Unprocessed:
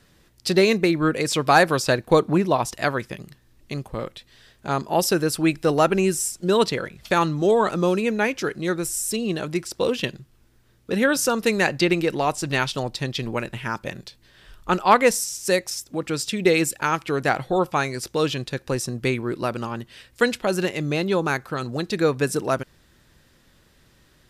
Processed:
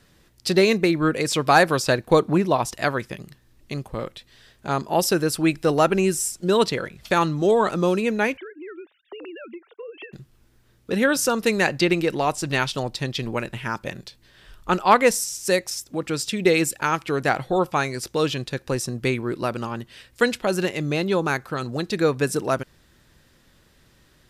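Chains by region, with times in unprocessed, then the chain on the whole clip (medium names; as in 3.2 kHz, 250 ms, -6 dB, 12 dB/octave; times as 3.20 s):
8.37–10.13 s: formants replaced by sine waves + high-pass 270 Hz + compression 12:1, threshold -34 dBFS
whole clip: none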